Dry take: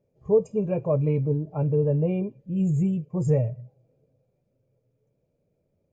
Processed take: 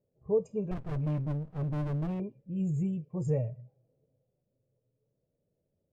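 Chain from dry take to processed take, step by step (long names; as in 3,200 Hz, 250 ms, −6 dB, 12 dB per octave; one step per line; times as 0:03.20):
low-pass that shuts in the quiet parts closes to 1,000 Hz, open at −22.5 dBFS
0:00.71–0:02.20: windowed peak hold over 65 samples
level −7.5 dB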